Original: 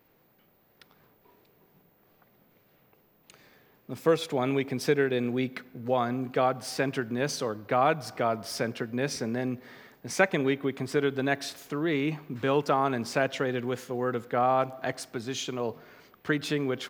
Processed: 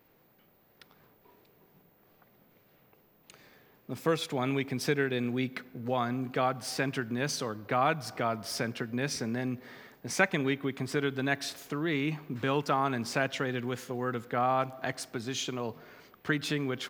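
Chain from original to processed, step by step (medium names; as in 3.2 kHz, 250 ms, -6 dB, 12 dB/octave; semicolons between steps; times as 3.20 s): dynamic bell 500 Hz, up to -6 dB, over -37 dBFS, Q 0.93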